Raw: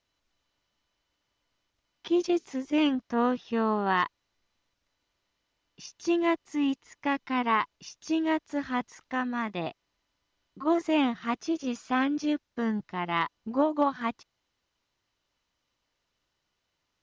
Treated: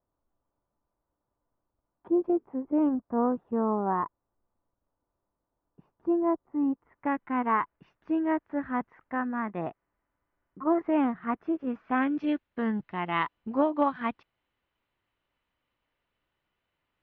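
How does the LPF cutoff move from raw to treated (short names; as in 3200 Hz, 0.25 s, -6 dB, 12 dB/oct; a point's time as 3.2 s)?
LPF 24 dB/oct
6.69 s 1100 Hz
7.13 s 1800 Hz
11.72 s 1800 Hz
12.34 s 3000 Hz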